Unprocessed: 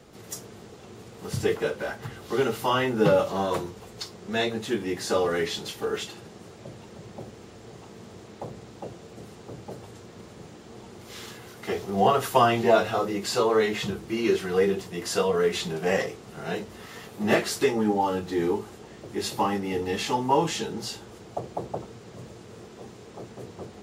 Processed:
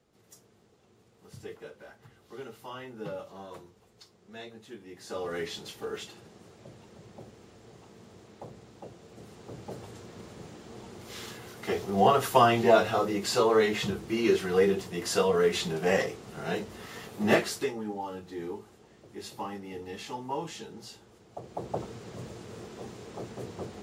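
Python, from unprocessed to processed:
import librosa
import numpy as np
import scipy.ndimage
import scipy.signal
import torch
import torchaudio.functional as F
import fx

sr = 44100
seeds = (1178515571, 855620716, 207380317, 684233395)

y = fx.gain(x, sr, db=fx.line((4.89, -18.0), (5.37, -7.5), (8.95, -7.5), (9.78, -1.0), (17.35, -1.0), (17.81, -12.0), (21.29, -12.0), (21.8, 1.0)))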